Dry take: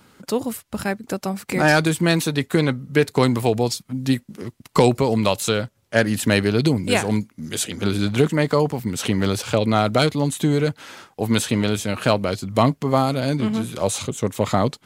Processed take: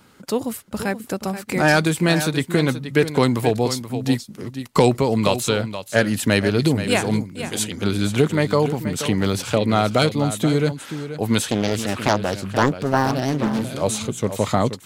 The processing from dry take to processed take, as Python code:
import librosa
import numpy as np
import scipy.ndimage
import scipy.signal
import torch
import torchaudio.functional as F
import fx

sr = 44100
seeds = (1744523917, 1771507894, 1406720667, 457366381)

y = x + 10.0 ** (-11.0 / 20.0) * np.pad(x, (int(479 * sr / 1000.0), 0))[:len(x)]
y = fx.doppler_dist(y, sr, depth_ms=0.8, at=(11.49, 13.69))